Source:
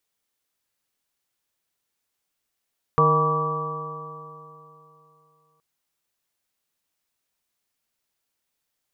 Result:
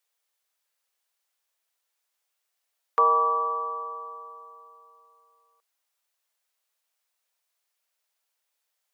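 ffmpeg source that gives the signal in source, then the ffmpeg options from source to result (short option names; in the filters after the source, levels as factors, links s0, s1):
-f lavfi -i "aevalsrc='0.0944*pow(10,-3*t/3.05)*sin(2*PI*153.24*t)+0.0188*pow(10,-3*t/3.05)*sin(2*PI*307.95*t)+0.1*pow(10,-3*t/3.05)*sin(2*PI*465.56*t)+0.0266*pow(10,-3*t/3.05)*sin(2*PI*627.47*t)+0.0282*pow(10,-3*t/3.05)*sin(2*PI*795.01*t)+0.0562*pow(10,-3*t/3.05)*sin(2*PI*969.44*t)+0.168*pow(10,-3*t/3.05)*sin(2*PI*1151.91*t)':d=2.62:s=44100"
-af "highpass=f=500:w=0.5412,highpass=f=500:w=1.3066" -ar 44100 -c:a aac -b:a 160k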